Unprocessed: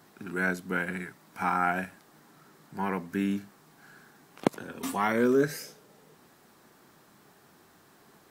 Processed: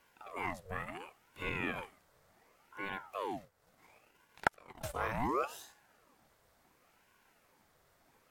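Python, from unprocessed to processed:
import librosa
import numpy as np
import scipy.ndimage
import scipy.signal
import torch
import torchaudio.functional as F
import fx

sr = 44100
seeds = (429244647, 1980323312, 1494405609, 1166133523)

y = fx.transient(x, sr, attack_db=5, sustain_db=-9, at=(3.42, 5.08))
y = fx.ring_lfo(y, sr, carrier_hz=780.0, swing_pct=65, hz=0.7)
y = F.gain(torch.from_numpy(y), -7.5).numpy()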